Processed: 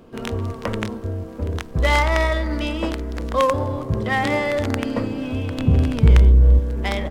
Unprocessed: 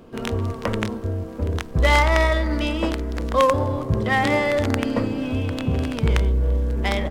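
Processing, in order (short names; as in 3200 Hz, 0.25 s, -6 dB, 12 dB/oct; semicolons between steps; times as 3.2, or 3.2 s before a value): 5.58–6.59 low shelf 220 Hz +10 dB; gain -1 dB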